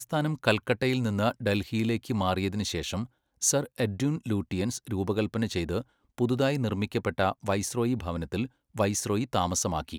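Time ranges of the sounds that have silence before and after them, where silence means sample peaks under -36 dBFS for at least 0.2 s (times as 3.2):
3.42–5.81
6.18–8.46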